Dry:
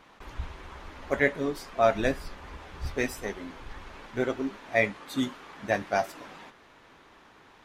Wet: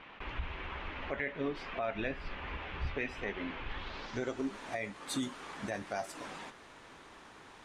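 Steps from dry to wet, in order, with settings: compressor 2.5:1, threshold -34 dBFS, peak gain reduction 12 dB; limiter -27 dBFS, peak gain reduction 9 dB; low-pass sweep 2700 Hz -> 9100 Hz, 3.66–4.44; gain +1 dB

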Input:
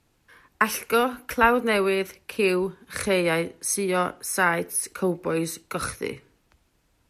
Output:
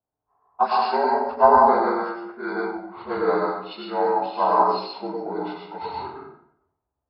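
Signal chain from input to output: inharmonic rescaling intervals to 76%; bell 760 Hz +14 dB 1.5 oct; low-pass opened by the level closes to 1100 Hz, open at -11 dBFS; plate-style reverb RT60 0.88 s, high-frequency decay 0.65×, pre-delay 85 ms, DRR -2 dB; three-band expander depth 40%; gain -9.5 dB

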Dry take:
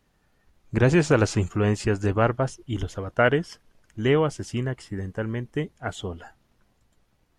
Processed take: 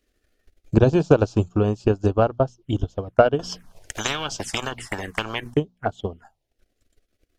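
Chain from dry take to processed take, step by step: bell 700 Hz +3 dB 0.42 oct; notches 60/120/180/240 Hz; transient shaper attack +11 dB, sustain -9 dB; envelope phaser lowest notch 150 Hz, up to 2000 Hz, full sweep at -21 dBFS; 3.39–5.54 spectral compressor 10:1; gain -1.5 dB

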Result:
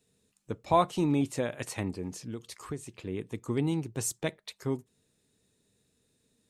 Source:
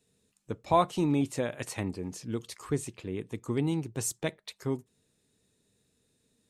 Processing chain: 2.27–2.95 compressor 2.5:1, threshold -37 dBFS, peak gain reduction 9.5 dB

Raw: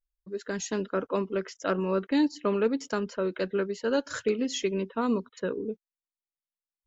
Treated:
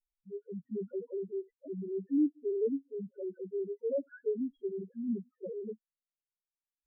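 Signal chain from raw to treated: switching dead time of 0.16 ms; rotary speaker horn 0.7 Hz; loudest bins only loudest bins 1; gain +1.5 dB

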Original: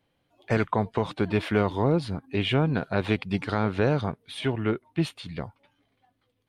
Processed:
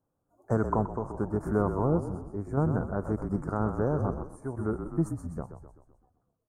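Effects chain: Chebyshev band-stop 1300–6900 Hz, order 3; frequency-shifting echo 0.127 s, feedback 57%, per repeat -39 Hz, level -8 dB; random-step tremolo; ending taper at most 490 dB/s; gain -1.5 dB

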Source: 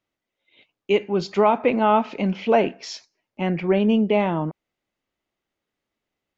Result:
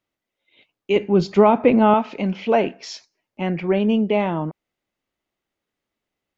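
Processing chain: 0.96–1.94 low shelf 400 Hz +10 dB

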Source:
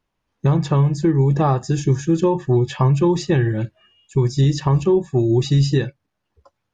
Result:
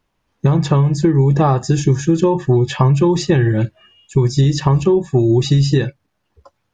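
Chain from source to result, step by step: compressor, threshold -16 dBFS, peak gain reduction 5 dB; gain +6.5 dB

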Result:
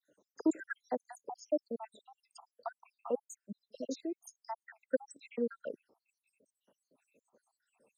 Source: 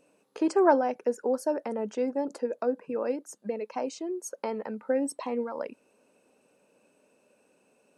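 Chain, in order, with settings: random spectral dropouts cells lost 84%; dispersion lows, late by 43 ms, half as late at 2700 Hz; gain -2 dB

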